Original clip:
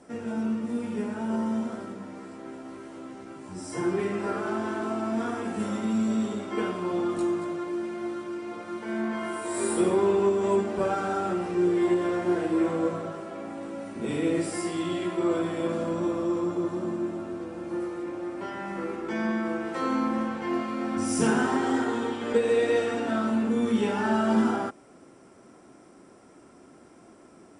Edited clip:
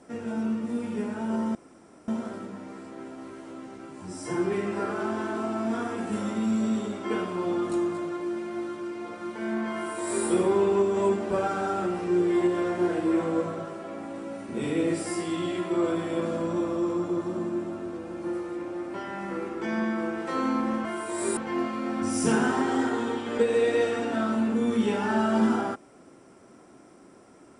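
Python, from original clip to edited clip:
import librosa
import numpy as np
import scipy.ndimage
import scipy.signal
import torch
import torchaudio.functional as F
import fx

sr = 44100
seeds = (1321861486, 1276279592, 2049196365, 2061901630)

y = fx.edit(x, sr, fx.insert_room_tone(at_s=1.55, length_s=0.53),
    fx.duplicate(start_s=9.21, length_s=0.52, to_s=20.32), tone=tone)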